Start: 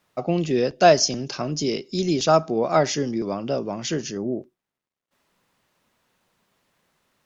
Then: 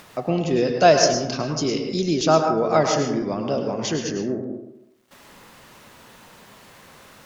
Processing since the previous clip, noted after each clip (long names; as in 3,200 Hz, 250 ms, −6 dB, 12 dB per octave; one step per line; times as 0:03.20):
in parallel at 0 dB: upward compression, threshold −22 dBFS
on the sum: dense smooth reverb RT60 0.84 s, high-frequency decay 0.35×, pre-delay 90 ms, DRR 3.5 dB
level −6 dB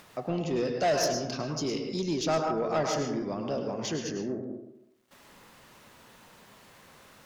soft clipping −13.5 dBFS, distortion −12 dB
level −7 dB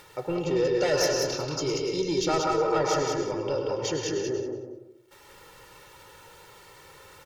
comb filter 2.2 ms, depth 95%
on a send: repeating echo 184 ms, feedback 18%, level −4 dB